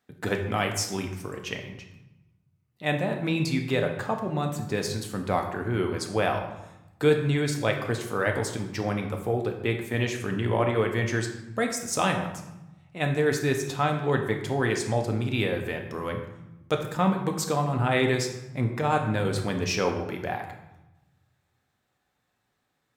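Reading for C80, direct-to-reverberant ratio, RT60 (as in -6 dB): 9.5 dB, 3.0 dB, 0.95 s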